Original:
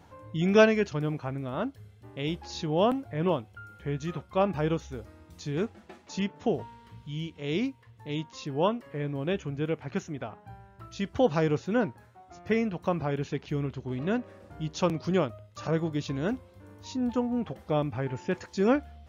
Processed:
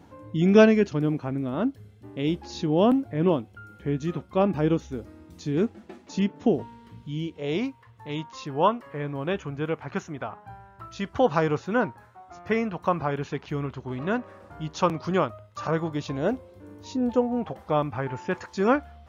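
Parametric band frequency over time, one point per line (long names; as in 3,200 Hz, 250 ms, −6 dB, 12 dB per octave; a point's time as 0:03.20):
parametric band +9 dB 1.3 octaves
0:07.14 270 Hz
0:07.69 1,100 Hz
0:15.88 1,100 Hz
0:16.73 310 Hz
0:17.75 1,100 Hz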